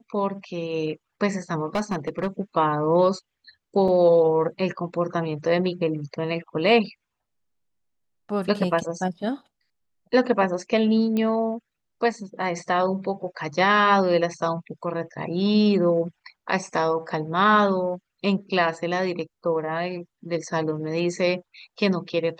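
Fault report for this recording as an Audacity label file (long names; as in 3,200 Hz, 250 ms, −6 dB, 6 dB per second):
1.750000	2.270000	clipping −19.5 dBFS
3.880000	3.880000	drop-out 3.6 ms
11.170000	11.170000	click −15 dBFS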